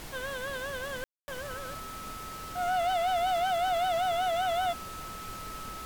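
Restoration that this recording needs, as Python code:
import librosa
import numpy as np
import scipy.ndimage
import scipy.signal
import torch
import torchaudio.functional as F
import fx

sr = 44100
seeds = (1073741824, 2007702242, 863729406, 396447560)

y = fx.fix_declip(x, sr, threshold_db=-24.0)
y = fx.notch(y, sr, hz=1300.0, q=30.0)
y = fx.fix_ambience(y, sr, seeds[0], print_start_s=1.91, print_end_s=2.41, start_s=1.04, end_s=1.28)
y = fx.noise_reduce(y, sr, print_start_s=1.91, print_end_s=2.41, reduce_db=30.0)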